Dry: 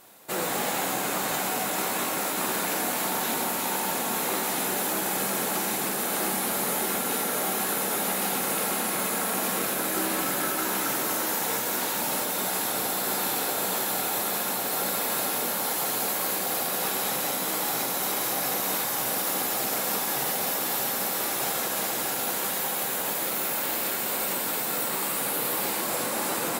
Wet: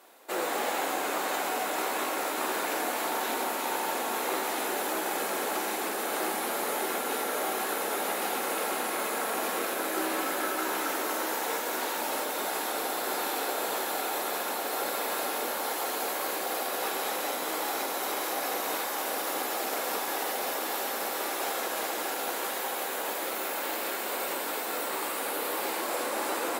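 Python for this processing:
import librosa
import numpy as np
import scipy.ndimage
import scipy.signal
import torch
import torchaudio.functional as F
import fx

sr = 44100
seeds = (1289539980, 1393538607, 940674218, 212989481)

y = scipy.signal.sosfilt(scipy.signal.butter(4, 290.0, 'highpass', fs=sr, output='sos'), x)
y = fx.high_shelf(y, sr, hz=4200.0, db=-8.5)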